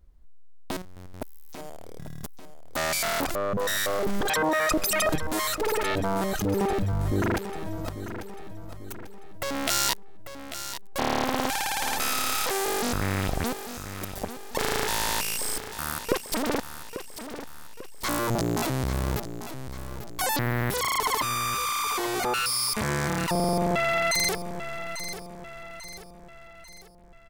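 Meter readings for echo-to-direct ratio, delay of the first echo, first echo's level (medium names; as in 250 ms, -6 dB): -10.0 dB, 843 ms, -11.0 dB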